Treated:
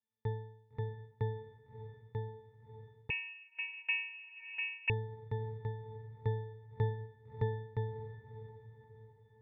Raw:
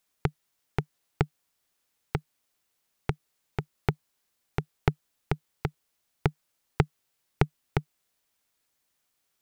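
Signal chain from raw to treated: octave resonator A, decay 0.69 s; diffused feedback echo 0.617 s, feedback 45%, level -12 dB; 3.1–4.9 inverted band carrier 2700 Hz; gain +10.5 dB

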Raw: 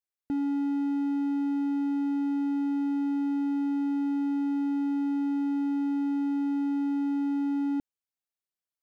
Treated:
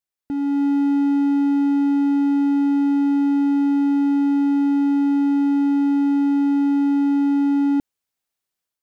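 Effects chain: AGC gain up to 7 dB; gain +3 dB

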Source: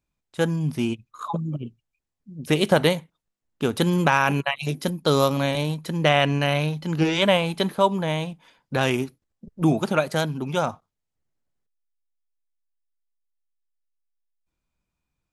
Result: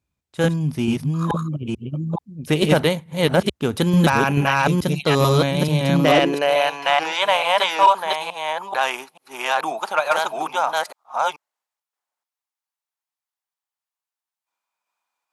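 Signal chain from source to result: reverse delay 0.437 s, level 0 dB; high-pass sweep 69 Hz -> 870 Hz, 5.49–6.73; added harmonics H 5 -20 dB, 7 -34 dB, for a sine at -1 dBFS; gain -1.5 dB

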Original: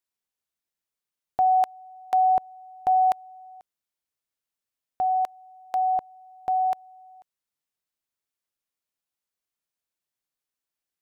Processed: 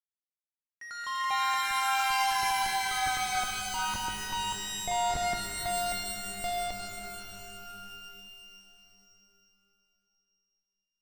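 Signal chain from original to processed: Doppler pass-by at 3.39, 22 m/s, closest 22 m; expander -51 dBFS; sample leveller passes 5; compressor 8:1, threshold -27 dBFS, peak gain reduction 9.5 dB; sample leveller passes 1; Schmitt trigger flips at -46.5 dBFS; echoes that change speed 88 ms, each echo +5 st, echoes 3; air absorption 88 m; shimmer reverb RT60 3 s, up +12 st, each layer -2 dB, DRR 3 dB; gain -1.5 dB

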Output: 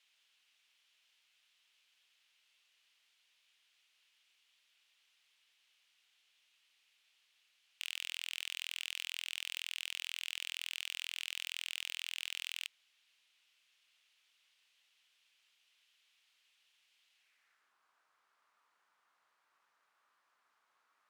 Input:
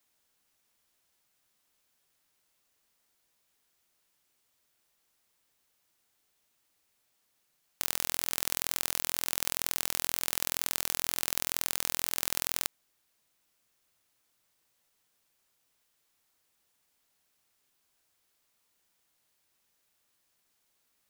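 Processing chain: band-pass sweep 2900 Hz -> 1200 Hz, 17.13–17.74; soft clip -37 dBFS, distortion -4 dB; gain +11.5 dB

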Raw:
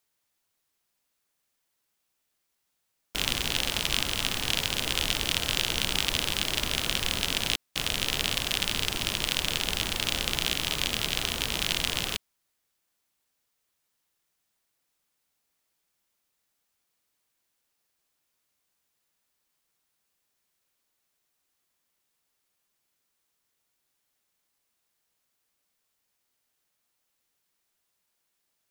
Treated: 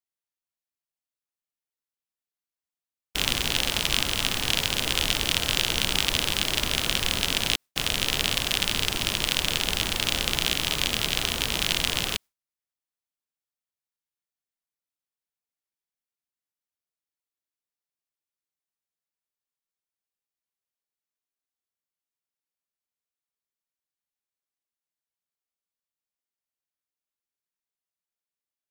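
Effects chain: gate with hold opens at -25 dBFS; gain +3 dB

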